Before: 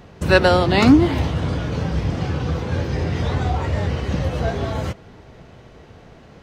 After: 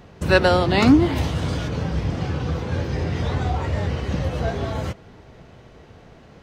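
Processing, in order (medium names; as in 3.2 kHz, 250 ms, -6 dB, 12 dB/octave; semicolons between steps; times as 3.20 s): 1.15–1.67 s: treble shelf 5.8 kHz -> 3.5 kHz +10.5 dB; trim -2 dB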